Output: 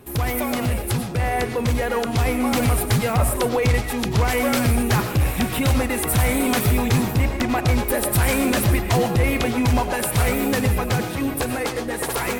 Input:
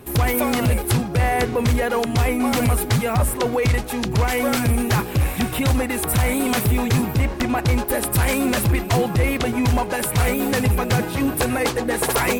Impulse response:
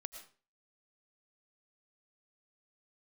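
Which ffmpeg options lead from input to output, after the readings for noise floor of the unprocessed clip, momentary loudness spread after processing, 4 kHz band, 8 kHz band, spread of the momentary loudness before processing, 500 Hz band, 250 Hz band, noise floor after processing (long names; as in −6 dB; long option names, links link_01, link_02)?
−29 dBFS, 5 LU, −0.5 dB, −0.5 dB, 2 LU, −1.0 dB, −0.5 dB, −28 dBFS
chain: -filter_complex "[0:a]dynaudnorm=framelen=370:gausssize=11:maxgain=4dB[link_01];[1:a]atrim=start_sample=2205,afade=type=out:start_time=0.21:duration=0.01,atrim=end_sample=9702[link_02];[link_01][link_02]afir=irnorm=-1:irlink=0"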